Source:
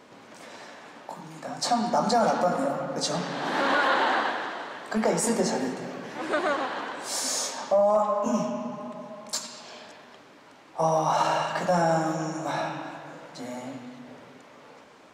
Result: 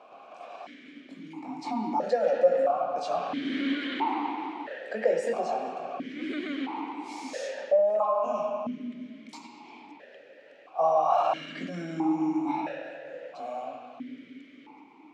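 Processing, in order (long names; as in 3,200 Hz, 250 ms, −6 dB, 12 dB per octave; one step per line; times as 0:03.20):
in parallel at +2 dB: brickwall limiter −22 dBFS, peak gain reduction 9.5 dB
on the sum: formant filter that steps through the vowels 1.5 Hz
level +3.5 dB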